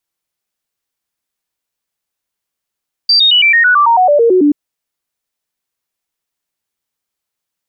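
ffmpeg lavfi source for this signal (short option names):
-f lavfi -i "aevalsrc='0.531*clip(min(mod(t,0.11),0.11-mod(t,0.11))/0.005,0,1)*sin(2*PI*4680*pow(2,-floor(t/0.11)/3)*mod(t,0.11))':d=1.43:s=44100"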